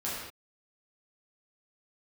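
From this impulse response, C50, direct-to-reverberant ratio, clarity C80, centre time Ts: -0.5 dB, -9.0 dB, 2.0 dB, 75 ms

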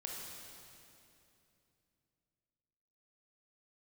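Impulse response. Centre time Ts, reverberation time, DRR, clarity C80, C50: 0.131 s, 2.8 s, -2.5 dB, 1.0 dB, -0.5 dB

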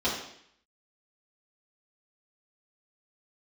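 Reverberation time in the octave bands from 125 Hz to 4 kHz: 0.70, 0.70, 0.65, 0.65, 0.75, 0.70 s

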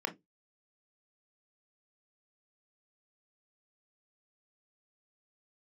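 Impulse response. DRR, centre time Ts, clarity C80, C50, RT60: 6.0 dB, 8 ms, 30.0 dB, 19.0 dB, 0.15 s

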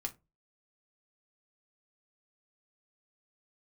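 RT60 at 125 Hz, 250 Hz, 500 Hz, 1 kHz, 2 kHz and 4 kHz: 0.40, 0.30, 0.25, 0.20, 0.20, 0.15 s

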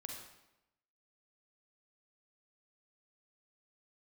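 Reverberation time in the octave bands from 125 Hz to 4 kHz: 0.90, 0.95, 0.95, 0.90, 0.85, 0.75 s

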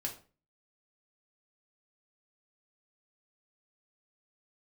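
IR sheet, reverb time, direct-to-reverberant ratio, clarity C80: 0.40 s, 0.0 dB, 16.0 dB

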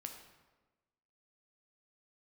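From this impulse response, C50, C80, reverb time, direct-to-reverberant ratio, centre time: 6.5 dB, 8.5 dB, 1.2 s, 3.5 dB, 27 ms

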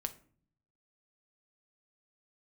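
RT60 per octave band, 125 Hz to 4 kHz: 1.1, 0.85, 0.55, 0.45, 0.40, 0.30 s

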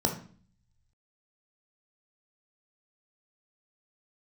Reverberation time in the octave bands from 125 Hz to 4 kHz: 1.3, 0.75, 0.45, 0.45, 0.40, 0.40 s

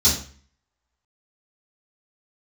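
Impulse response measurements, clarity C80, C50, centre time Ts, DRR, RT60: 10.0 dB, 5.0 dB, 35 ms, -12.5 dB, 0.45 s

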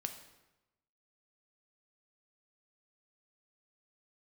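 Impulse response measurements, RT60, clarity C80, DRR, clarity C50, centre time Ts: 1.0 s, 11.5 dB, 6.0 dB, 9.0 dB, 16 ms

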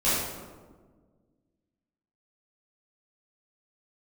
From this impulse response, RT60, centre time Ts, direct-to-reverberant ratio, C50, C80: 1.5 s, 94 ms, -13.5 dB, -2.0 dB, 1.5 dB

